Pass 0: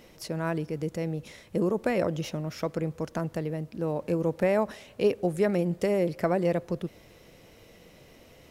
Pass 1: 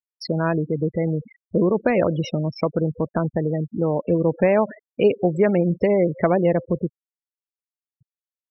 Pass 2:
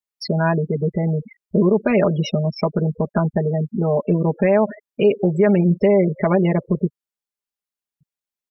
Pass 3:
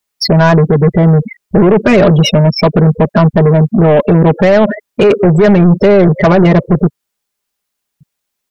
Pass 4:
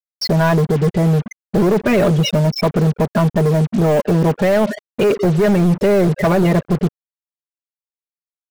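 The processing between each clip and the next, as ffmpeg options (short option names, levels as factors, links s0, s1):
-filter_complex "[0:a]afftfilt=real='re*gte(hypot(re,im),0.0251)':imag='im*gte(hypot(re,im),0.0251)':win_size=1024:overlap=0.75,asplit=2[s0][s1];[s1]acompressor=threshold=0.0251:ratio=6,volume=1.12[s2];[s0][s2]amix=inputs=2:normalize=0,volume=1.68"
-af "aecho=1:1:4.9:0.98,alimiter=level_in=2:limit=0.891:release=50:level=0:latency=1,volume=0.531"
-af "apsyclip=5.62,aeval=exprs='1.12*(cos(1*acos(clip(val(0)/1.12,-1,1)))-cos(1*PI/2))+0.112*(cos(5*acos(clip(val(0)/1.12,-1,1)))-cos(5*PI/2))':c=same,volume=0.841"
-af "acrusher=bits=3:mix=0:aa=0.5,volume=0.447"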